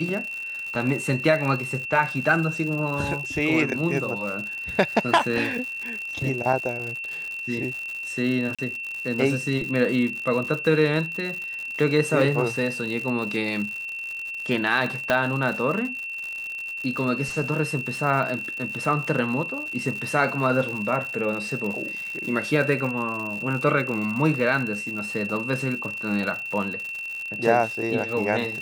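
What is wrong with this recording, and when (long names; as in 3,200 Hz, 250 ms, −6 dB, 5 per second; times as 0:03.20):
surface crackle 120 per second −30 dBFS
whistle 2,700 Hz −30 dBFS
0:08.55–0:08.59: drop-out 36 ms
0:15.10: click −8 dBFS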